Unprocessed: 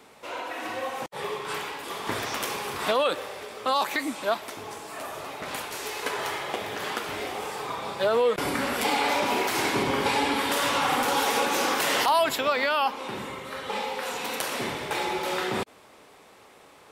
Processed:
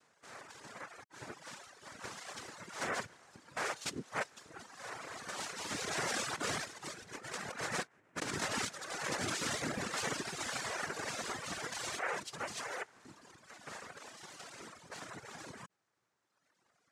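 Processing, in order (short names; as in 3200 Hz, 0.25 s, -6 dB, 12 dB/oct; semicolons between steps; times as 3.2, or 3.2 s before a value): Doppler pass-by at 7.21, 9 m/s, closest 4.1 m; HPF 280 Hz 24 dB/oct; noise vocoder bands 3; dynamic EQ 990 Hz, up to -4 dB, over -49 dBFS, Q 1.3; negative-ratio compressor -41 dBFS, ratio -0.5; reverb removal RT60 1.8 s; gain +5.5 dB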